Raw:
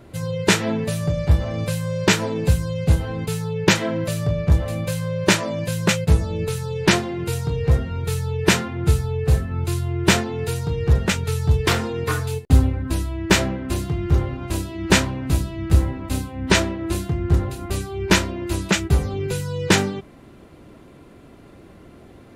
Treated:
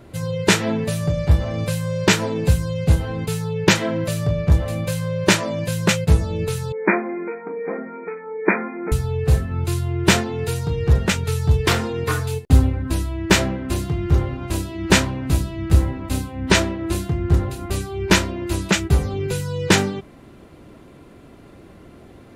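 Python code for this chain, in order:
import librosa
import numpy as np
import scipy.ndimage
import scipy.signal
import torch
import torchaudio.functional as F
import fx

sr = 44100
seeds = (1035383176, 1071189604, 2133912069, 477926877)

y = fx.brickwall_bandpass(x, sr, low_hz=190.0, high_hz=2500.0, at=(6.72, 8.92))
y = F.gain(torch.from_numpy(y), 1.0).numpy()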